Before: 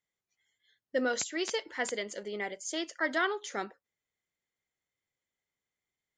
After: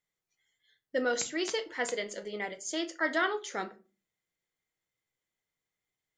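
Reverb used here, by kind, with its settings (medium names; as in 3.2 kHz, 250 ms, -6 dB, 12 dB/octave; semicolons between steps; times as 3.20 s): simulated room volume 170 m³, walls furnished, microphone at 0.59 m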